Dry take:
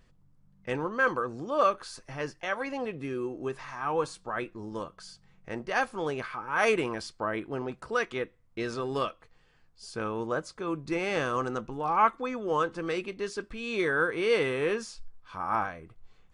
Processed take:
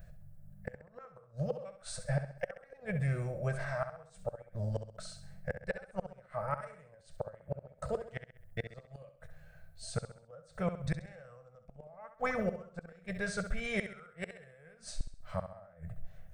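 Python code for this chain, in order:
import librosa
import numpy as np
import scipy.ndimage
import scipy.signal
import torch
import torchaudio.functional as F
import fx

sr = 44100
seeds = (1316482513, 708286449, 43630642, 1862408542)

y = fx.curve_eq(x, sr, hz=(180.0, 270.0, 390.0, 620.0, 1000.0, 1800.0, 3100.0, 7500.0, 12000.0), db=(0, -30, -26, 7, -20, -6, -17, -12, 2))
y = fx.gate_flip(y, sr, shuts_db=-33.0, range_db=-31)
y = fx.formant_shift(y, sr, semitones=-2)
y = fx.echo_feedback(y, sr, ms=66, feedback_pct=44, wet_db=-10.0)
y = y * 10.0 ** (11.5 / 20.0)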